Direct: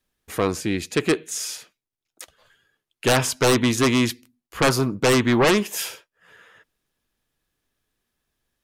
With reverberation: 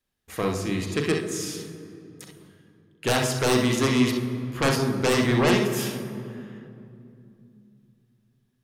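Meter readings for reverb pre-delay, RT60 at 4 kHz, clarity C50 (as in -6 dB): 35 ms, 1.6 s, 3.5 dB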